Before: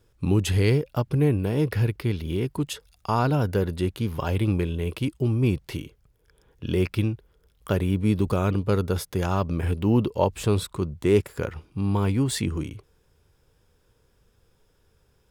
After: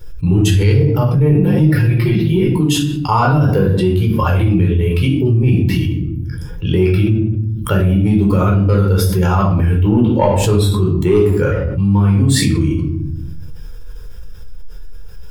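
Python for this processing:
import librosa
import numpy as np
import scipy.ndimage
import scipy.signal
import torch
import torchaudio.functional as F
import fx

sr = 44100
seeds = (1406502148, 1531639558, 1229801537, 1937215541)

y = fx.bin_expand(x, sr, power=1.5)
y = fx.comb(y, sr, ms=5.6, depth=0.99, at=(1.29, 2.44))
y = 10.0 ** (-13.5 / 20.0) * np.tanh(y / 10.0 ** (-13.5 / 20.0))
y = fx.room_shoebox(y, sr, seeds[0], volume_m3=730.0, walls='furnished', distance_m=4.4)
y = fx.env_flatten(y, sr, amount_pct=70)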